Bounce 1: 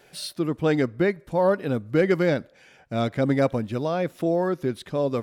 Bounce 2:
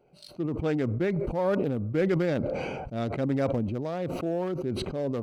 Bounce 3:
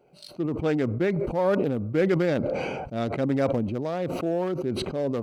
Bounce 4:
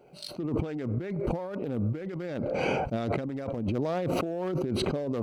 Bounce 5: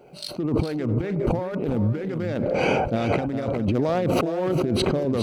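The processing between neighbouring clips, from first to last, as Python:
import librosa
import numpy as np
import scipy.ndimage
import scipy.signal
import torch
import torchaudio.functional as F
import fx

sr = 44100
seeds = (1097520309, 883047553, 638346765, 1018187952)

y1 = fx.wiener(x, sr, points=25)
y1 = fx.notch(y1, sr, hz=1000.0, q=20.0)
y1 = fx.sustainer(y1, sr, db_per_s=21.0)
y1 = F.gain(torch.from_numpy(y1), -6.0).numpy()
y2 = fx.low_shelf(y1, sr, hz=100.0, db=-8.0)
y2 = F.gain(torch.from_numpy(y2), 3.5).numpy()
y3 = fx.over_compress(y2, sr, threshold_db=-31.0, ratio=-1.0)
y4 = y3 + 10.0 ** (-9.5 / 20.0) * np.pad(y3, (int(409 * sr / 1000.0), 0))[:len(y3)]
y4 = F.gain(torch.from_numpy(y4), 6.5).numpy()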